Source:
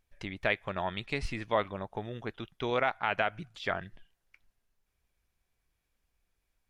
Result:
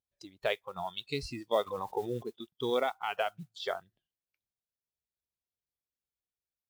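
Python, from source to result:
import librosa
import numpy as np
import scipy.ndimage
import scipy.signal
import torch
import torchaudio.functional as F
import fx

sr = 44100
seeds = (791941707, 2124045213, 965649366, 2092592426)

y = scipy.signal.sosfilt(scipy.signal.butter(2, 76.0, 'highpass', fs=sr, output='sos'), x)
y = fx.noise_reduce_blind(y, sr, reduce_db=19)
y = fx.graphic_eq(y, sr, hz=(500, 1000, 2000, 4000), db=(3, -3, -9, 6))
y = fx.mod_noise(y, sr, seeds[0], snr_db=28)
y = fx.env_flatten(y, sr, amount_pct=50, at=(1.66, 2.22), fade=0.02)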